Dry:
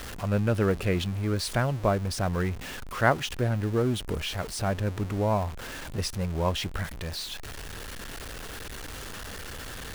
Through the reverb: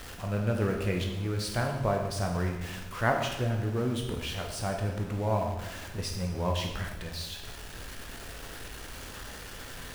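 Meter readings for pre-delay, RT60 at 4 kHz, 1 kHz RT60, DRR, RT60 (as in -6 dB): 11 ms, 0.95 s, 1.0 s, 1.0 dB, 1.1 s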